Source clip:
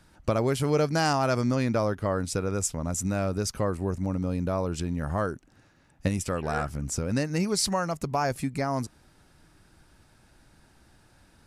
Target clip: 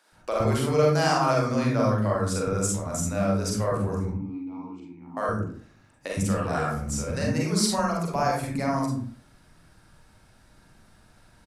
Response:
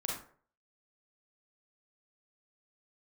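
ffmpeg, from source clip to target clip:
-filter_complex "[0:a]asettb=1/sr,asplit=3[a][b][c];[a]atrim=end=4.054[d];[b]atrim=start=4.05:end=5.17,asetpts=PTS-STARTPTS,afade=t=in:d=0.004:c=qsin,afade=t=out:st=1.116:d=0.004:c=qsin,asplit=3[e][f][g];[e]bandpass=f=300:t=q:w=8,volume=0dB[h];[f]bandpass=f=870:t=q:w=8,volume=-6dB[i];[g]bandpass=f=2.24k:t=q:w=8,volume=-9dB[j];[h][i][j]amix=inputs=3:normalize=0[k];[c]atrim=start=5.166[l];[d][k]acrossfade=d=0.004:c1=hsin:c2=qsin[m];[m][l]acrossfade=d=0.004:c1=qsin:c2=hsin,acrossover=split=360[n][o];[n]adelay=120[p];[p][o]amix=inputs=2:normalize=0[q];[1:a]atrim=start_sample=2205[r];[q][r]afir=irnorm=-1:irlink=0"

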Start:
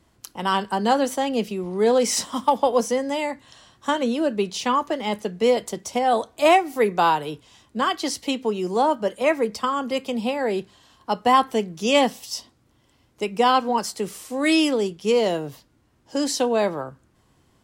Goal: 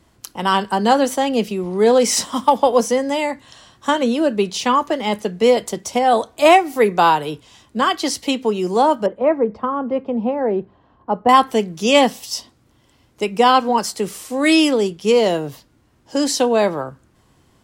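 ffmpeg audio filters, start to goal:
-filter_complex "[0:a]asettb=1/sr,asplit=3[a][b][c];[a]atrim=end=9.064[d];[b]atrim=start=9.06:end=11.29,asetpts=PTS-STARTPTS,afade=t=in:d=0.004:c=qsin,afade=t=out:st=2.226:d=0.004:c=qsin,lowpass=1k[e];[c]atrim=start=11.286[f];[d][e]acrossfade=d=0.004:c1=hsin:c2=qsin[g];[g][f]acrossfade=d=0.004:c1=qsin:c2=hsin,volume=5dB"

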